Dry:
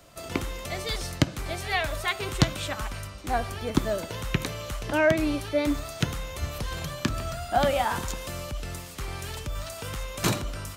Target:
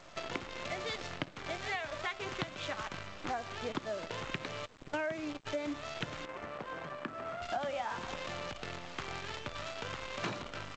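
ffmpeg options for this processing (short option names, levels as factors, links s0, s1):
-filter_complex "[0:a]highpass=100,lowpass=3100,lowshelf=f=290:g=-8,asplit=3[s0][s1][s2];[s0]afade=t=out:st=4.65:d=0.02[s3];[s1]agate=range=0.0398:threshold=0.0355:ratio=16:detection=peak,afade=t=in:st=4.65:d=0.02,afade=t=out:st=5.45:d=0.02[s4];[s2]afade=t=in:st=5.45:d=0.02[s5];[s3][s4][s5]amix=inputs=3:normalize=0,asplit=2[s6][s7];[s7]adelay=522,lowpass=f=950:p=1,volume=0.0794,asplit=2[s8][s9];[s9]adelay=522,lowpass=f=950:p=1,volume=0.55,asplit=2[s10][s11];[s11]adelay=522,lowpass=f=950:p=1,volume=0.55,asplit=2[s12][s13];[s13]adelay=522,lowpass=f=950:p=1,volume=0.55[s14];[s6][s8][s10][s12][s14]amix=inputs=5:normalize=0,acrusher=bits=7:dc=4:mix=0:aa=0.000001,acompressor=threshold=0.00794:ratio=5,asettb=1/sr,asplit=3[s15][s16][s17];[s15]atrim=end=6.254[s18];[s16]atrim=start=6.25:end=7.42,asetpts=PTS-STARTPTS,afade=t=in:d=0.004:c=qsin,afade=t=out:st=1.166:d=0.004:c=qsin,acrossover=split=170 2100:gain=0.2 1 0.141[s19][s20][s21];[s19][s20][s21]amix=inputs=3:normalize=0[s22];[s17]atrim=start=7.416[s23];[s18][s22]acrossfade=d=0.004:c1=hsin:c2=qsin[s24];[s24][s23]acrossfade=d=0.004:c1=qsin:c2=hsin,volume=2" -ar 16000 -c:a g722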